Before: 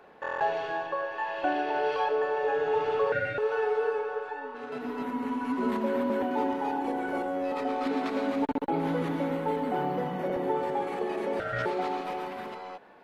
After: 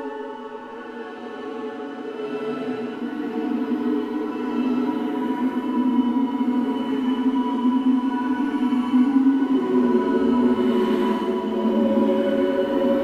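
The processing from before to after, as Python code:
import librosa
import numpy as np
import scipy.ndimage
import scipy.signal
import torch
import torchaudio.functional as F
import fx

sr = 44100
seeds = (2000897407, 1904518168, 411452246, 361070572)

y = fx.small_body(x, sr, hz=(310.0, 3000.0), ring_ms=60, db=17)
y = fx.leveller(y, sr, passes=1)
y = fx.paulstretch(y, sr, seeds[0], factor=8.5, window_s=0.1, from_s=4.45)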